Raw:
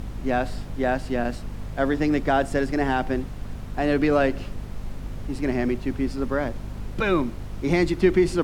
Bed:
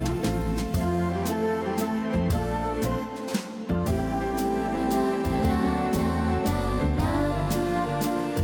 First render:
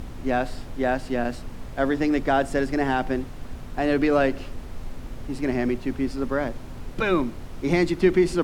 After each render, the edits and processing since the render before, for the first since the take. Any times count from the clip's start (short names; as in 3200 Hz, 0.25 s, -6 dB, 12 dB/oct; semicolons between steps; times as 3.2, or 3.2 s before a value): notches 50/100/150/200 Hz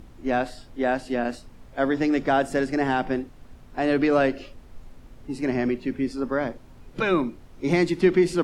noise print and reduce 11 dB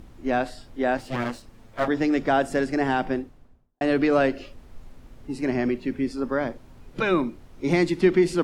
0.97–1.88 minimum comb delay 8.9 ms; 3.04–3.81 studio fade out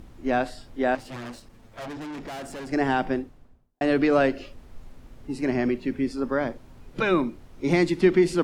0.95–2.72 tube stage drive 34 dB, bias 0.3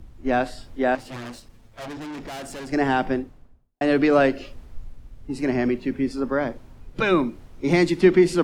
in parallel at -2 dB: compressor, threshold -29 dBFS, peak gain reduction 15 dB; on the sum: three-band expander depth 40%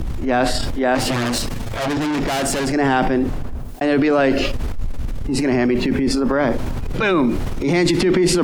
transient shaper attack -8 dB, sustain +8 dB; fast leveller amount 70%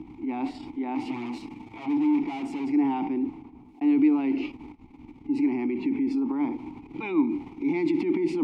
vowel filter u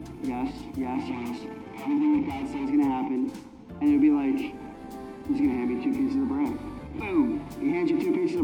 add bed -16 dB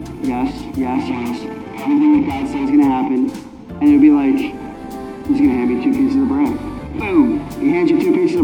gain +11 dB